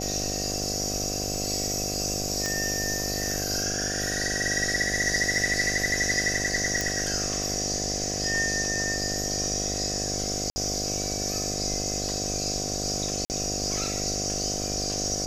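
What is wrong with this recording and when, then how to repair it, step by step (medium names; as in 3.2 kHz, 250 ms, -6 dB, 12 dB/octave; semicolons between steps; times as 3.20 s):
buzz 50 Hz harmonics 15 -33 dBFS
2.46 s: pop -13 dBFS
6.81 s: pop
10.50–10.56 s: dropout 60 ms
13.25–13.30 s: dropout 49 ms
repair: de-click; de-hum 50 Hz, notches 15; interpolate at 10.50 s, 60 ms; interpolate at 13.25 s, 49 ms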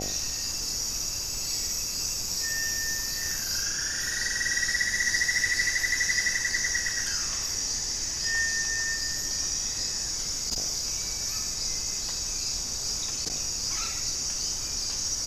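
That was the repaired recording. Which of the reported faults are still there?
nothing left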